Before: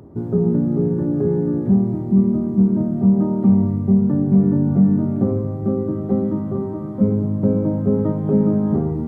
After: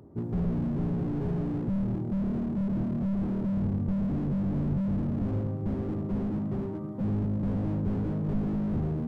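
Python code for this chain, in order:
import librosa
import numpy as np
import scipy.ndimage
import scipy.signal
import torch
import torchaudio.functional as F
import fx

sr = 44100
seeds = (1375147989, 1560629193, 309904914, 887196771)

y = fx.dynamic_eq(x, sr, hz=160.0, q=0.72, threshold_db=-27.0, ratio=4.0, max_db=4)
y = fx.slew_limit(y, sr, full_power_hz=25.0)
y = F.gain(torch.from_numpy(y), -9.0).numpy()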